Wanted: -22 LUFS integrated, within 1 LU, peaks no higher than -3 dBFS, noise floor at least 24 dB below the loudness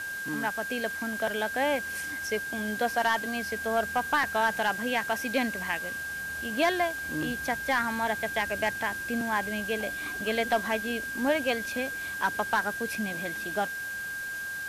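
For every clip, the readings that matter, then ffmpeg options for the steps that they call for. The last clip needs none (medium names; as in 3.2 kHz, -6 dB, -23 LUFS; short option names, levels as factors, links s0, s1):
steady tone 1.6 kHz; tone level -33 dBFS; noise floor -36 dBFS; noise floor target -54 dBFS; loudness -29.5 LUFS; peak level -15.0 dBFS; loudness target -22.0 LUFS
-> -af "bandreject=f=1600:w=30"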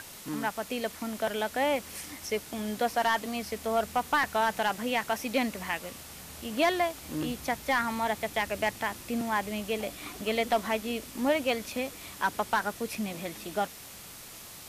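steady tone not found; noise floor -46 dBFS; noise floor target -55 dBFS
-> -af "afftdn=nr=9:nf=-46"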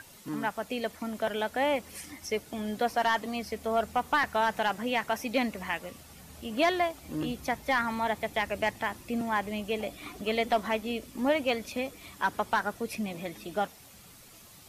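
noise floor -53 dBFS; noise floor target -55 dBFS
-> -af "afftdn=nr=6:nf=-53"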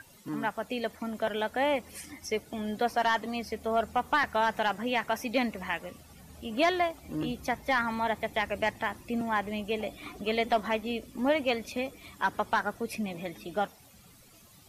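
noise floor -56 dBFS; loudness -31.0 LUFS; peak level -16.0 dBFS; loudness target -22.0 LUFS
-> -af "volume=2.82"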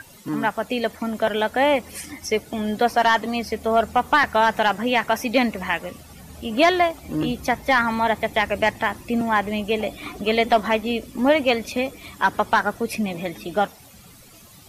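loudness -22.0 LUFS; peak level -7.0 dBFS; noise floor -47 dBFS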